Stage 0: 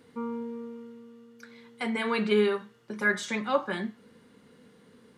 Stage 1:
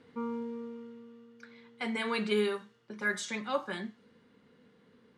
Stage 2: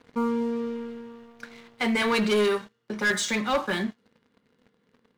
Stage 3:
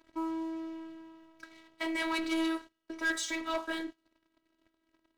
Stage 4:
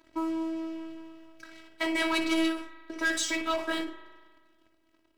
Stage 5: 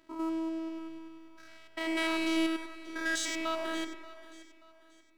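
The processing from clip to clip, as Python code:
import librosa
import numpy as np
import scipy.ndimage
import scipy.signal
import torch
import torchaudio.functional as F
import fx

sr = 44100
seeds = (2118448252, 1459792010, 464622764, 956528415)

y1 = fx.env_lowpass(x, sr, base_hz=2900.0, full_db=-21.0)
y1 = fx.high_shelf(y1, sr, hz=5000.0, db=12.0)
y1 = fx.rider(y1, sr, range_db=4, speed_s=2.0)
y1 = y1 * 10.0 ** (-6.0 / 20.0)
y2 = fx.leveller(y1, sr, passes=3)
y3 = fx.robotise(y2, sr, hz=324.0)
y3 = y3 * 10.0 ** (-5.5 / 20.0)
y4 = fx.room_early_taps(y3, sr, ms=(17, 59), db=(-12.0, -11.5))
y4 = fx.rev_spring(y4, sr, rt60_s=1.6, pass_ms=(39,), chirp_ms=75, drr_db=10.5)
y4 = fx.end_taper(y4, sr, db_per_s=110.0)
y4 = y4 * 10.0 ** (5.5 / 20.0)
y5 = fx.spec_steps(y4, sr, hold_ms=100)
y5 = fx.echo_feedback(y5, sr, ms=582, feedback_pct=35, wet_db=-17)
y5 = y5 * 10.0 ** (-2.0 / 20.0)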